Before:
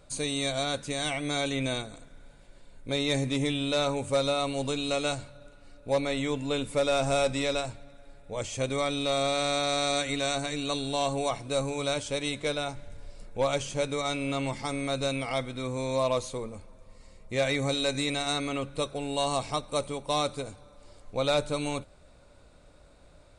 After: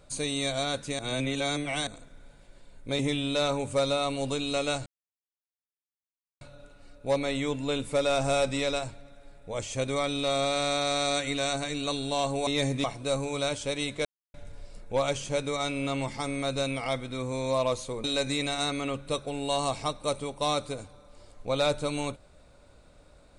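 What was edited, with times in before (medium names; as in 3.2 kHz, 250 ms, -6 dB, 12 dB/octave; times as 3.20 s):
0.99–1.87 s: reverse
2.99–3.36 s: move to 11.29 s
5.23 s: insert silence 1.55 s
12.50–12.79 s: mute
16.49–17.72 s: delete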